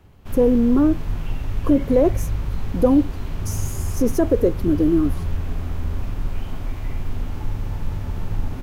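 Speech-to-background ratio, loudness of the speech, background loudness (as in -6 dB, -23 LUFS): 10.0 dB, -19.5 LUFS, -29.5 LUFS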